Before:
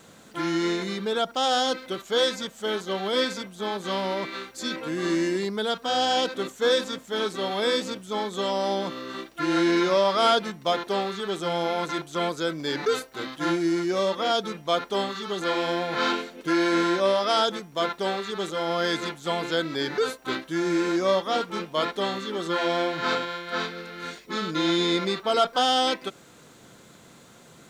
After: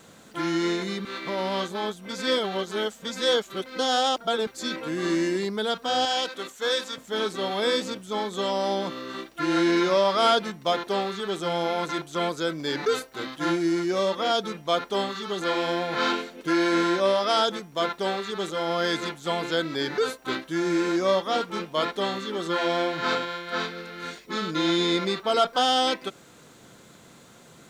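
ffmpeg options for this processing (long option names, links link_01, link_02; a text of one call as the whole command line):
ffmpeg -i in.wav -filter_complex "[0:a]asettb=1/sr,asplit=3[link_01][link_02][link_03];[link_01]atrim=end=6.054[link_04];[link_02]atrim=start=6.05:end=6.98,asetpts=PTS-STARTPTS,afade=type=in:duration=0.004:curve=qsin,afade=type=out:start_time=0.926:duration=0.004:curve=qsin,lowshelf=frequency=470:gain=-12[link_05];[link_03]atrim=start=6.976[link_06];[link_04][link_05]acrossfade=duration=0.004:curve1=hsin:curve2=qsin[link_07];[link_07][link_06]acrossfade=duration=0.004:curve1=qsin:curve2=hsin,asplit=3[link_08][link_09][link_10];[link_08]atrim=end=1.052[link_11];[link_09]atrim=start=1.048:end=4.472,asetpts=PTS-STARTPTS,areverse[link_12];[link_10]atrim=start=4.468[link_13];[link_11][link_12]acrossfade=duration=0.004:curve1=hsin:curve2=hsin[link_14];[link_14][link_13]acrossfade=duration=0.004:curve1=hsin:curve2=hsin" out.wav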